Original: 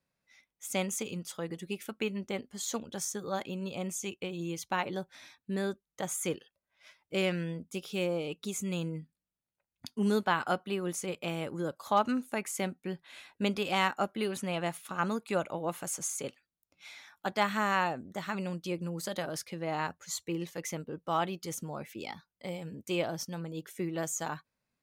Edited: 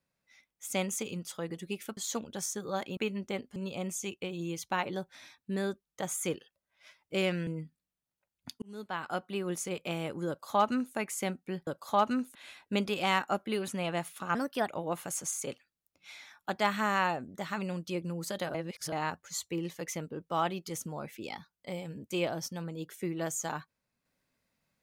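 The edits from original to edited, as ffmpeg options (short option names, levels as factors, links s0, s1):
-filter_complex "[0:a]asplit=12[s0][s1][s2][s3][s4][s5][s6][s7][s8][s9][s10][s11];[s0]atrim=end=1.972[s12];[s1]atrim=start=2.558:end=3.562[s13];[s2]atrim=start=1.968:end=2.562[s14];[s3]atrim=start=3.558:end=7.472[s15];[s4]atrim=start=8.838:end=9.99,asetpts=PTS-STARTPTS,afade=t=out:st=1.148:d=0.004:c=hsin[s16];[s5]atrim=start=9.99:end=13.042,asetpts=PTS-STARTPTS,afade=t=in:d=0.86[s17];[s6]atrim=start=11.648:end=12.332[s18];[s7]atrim=start=13.038:end=15.044[s19];[s8]atrim=start=15.04:end=15.45,asetpts=PTS-STARTPTS,asetrate=54243,aresample=44100[s20];[s9]atrim=start=15.446:end=19.312[s21];[s10]atrim=start=19.308:end=19.692,asetpts=PTS-STARTPTS,areverse[s22];[s11]atrim=start=19.688[s23];[s12][s13]acrossfade=d=0.004:c1=hsin:c2=hsin[s24];[s24][s14]acrossfade=d=0.004:c1=hsin:c2=hsin[s25];[s25][s15]acrossfade=d=0.004:c1=hsin:c2=hsin[s26];[s16][s17]concat=n=2:v=0:a=1[s27];[s26][s27]acrossfade=d=0.004:c1=hsin:c2=hsin[s28];[s28][s18]acrossfade=d=0.004:c1=hsin:c2=hsin[s29];[s29][s19]acrossfade=d=0.004:c1=hsin:c2=hsin[s30];[s30][s20]acrossfade=d=0.004:c1=hsin:c2=hsin[s31];[s31][s21]acrossfade=d=0.004:c1=hsin:c2=hsin[s32];[s32][s22]acrossfade=d=0.004:c1=hsin:c2=hsin[s33];[s33][s23]acrossfade=d=0.004:c1=hsin:c2=hsin"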